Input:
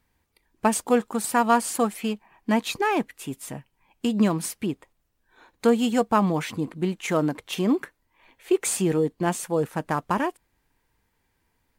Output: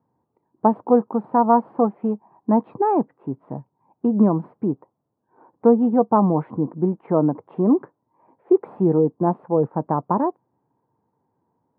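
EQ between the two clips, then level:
elliptic band-pass filter 120–970 Hz, stop band 70 dB
+5.5 dB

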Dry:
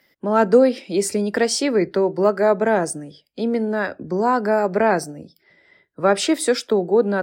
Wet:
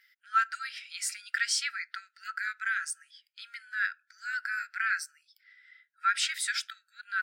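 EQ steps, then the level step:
linear-phase brick-wall high-pass 1,300 Hz
high-shelf EQ 3,400 Hz −7.5 dB
0.0 dB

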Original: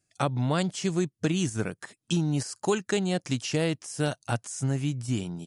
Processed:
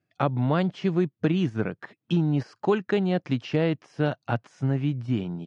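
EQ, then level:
high-pass filter 110 Hz
high-frequency loss of the air 300 metres
high-shelf EQ 6,300 Hz −8 dB
+4.0 dB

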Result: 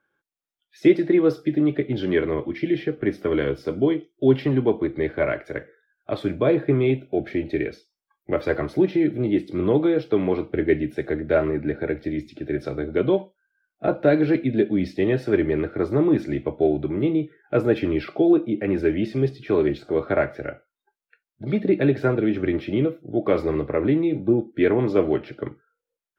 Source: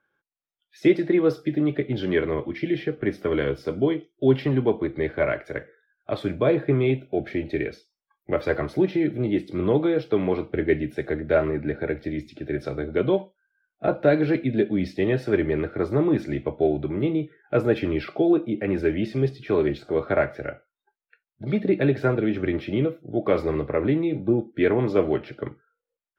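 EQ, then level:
parametric band 310 Hz +3 dB 0.73 octaves
0.0 dB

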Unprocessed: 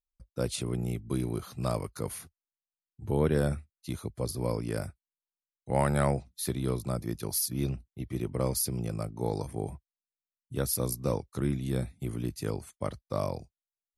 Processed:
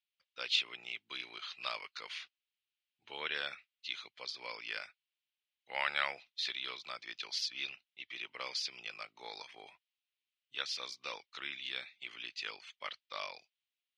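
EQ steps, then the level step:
moving average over 4 samples
high-pass with resonance 2,900 Hz, resonance Q 2.1
high-frequency loss of the air 230 metres
+12.0 dB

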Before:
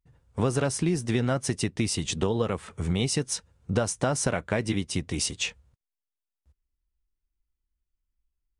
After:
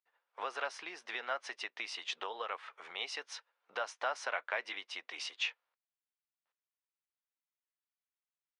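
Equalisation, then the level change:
Bessel high-pass filter 1,100 Hz, order 4
high-frequency loss of the air 280 metres
+1.0 dB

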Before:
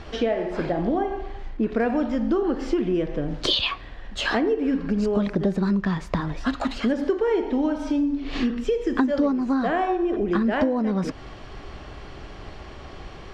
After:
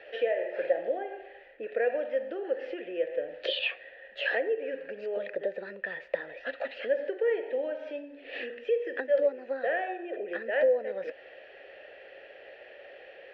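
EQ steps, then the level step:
formant filter e
three-way crossover with the lows and the highs turned down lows −23 dB, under 480 Hz, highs −22 dB, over 4,200 Hz
low-shelf EQ 130 Hz +11 dB
+8.5 dB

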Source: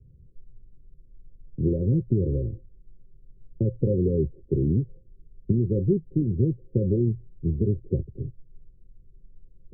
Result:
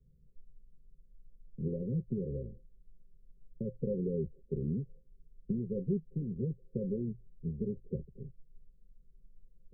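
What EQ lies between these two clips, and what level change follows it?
phaser with its sweep stopped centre 480 Hz, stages 8
−7.5 dB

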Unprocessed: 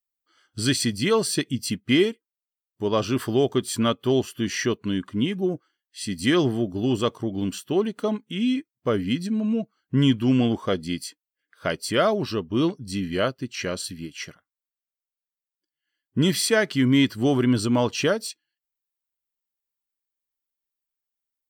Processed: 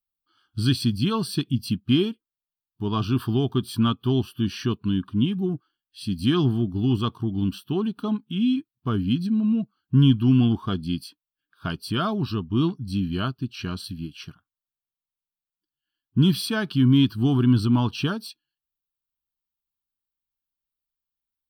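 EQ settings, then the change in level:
low-shelf EQ 290 Hz +9.5 dB
phaser with its sweep stopped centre 2,000 Hz, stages 6
−1.5 dB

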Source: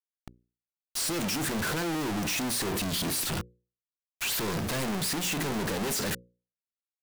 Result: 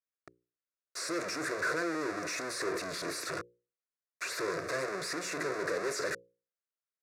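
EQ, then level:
band-pass filter 260–5,000 Hz
phaser with its sweep stopped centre 840 Hz, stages 6
+2.0 dB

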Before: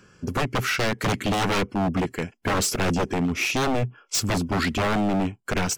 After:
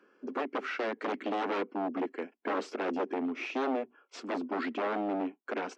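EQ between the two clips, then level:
Butterworth high-pass 250 Hz 48 dB per octave
head-to-tape spacing loss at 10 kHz 37 dB
−4.0 dB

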